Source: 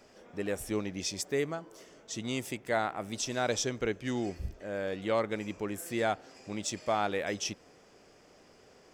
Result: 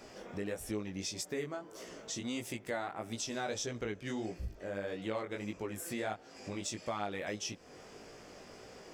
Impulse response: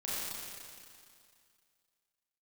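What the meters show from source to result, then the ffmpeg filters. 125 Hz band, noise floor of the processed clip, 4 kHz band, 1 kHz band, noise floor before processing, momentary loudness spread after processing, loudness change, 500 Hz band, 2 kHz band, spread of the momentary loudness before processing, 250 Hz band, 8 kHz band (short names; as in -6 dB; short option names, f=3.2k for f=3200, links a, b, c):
-4.0 dB, -55 dBFS, -4.5 dB, -7.0 dB, -60 dBFS, 14 LU, -5.5 dB, -6.5 dB, -5.5 dB, 10 LU, -4.5 dB, -4.0 dB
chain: -af "flanger=delay=17:depth=4.4:speed=1.6,acompressor=threshold=-51dB:ratio=2.5,volume=9.5dB"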